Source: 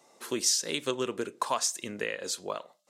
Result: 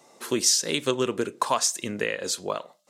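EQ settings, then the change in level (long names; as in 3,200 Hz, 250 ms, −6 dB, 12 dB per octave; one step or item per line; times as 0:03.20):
low-shelf EQ 180 Hz +6 dB
+5.0 dB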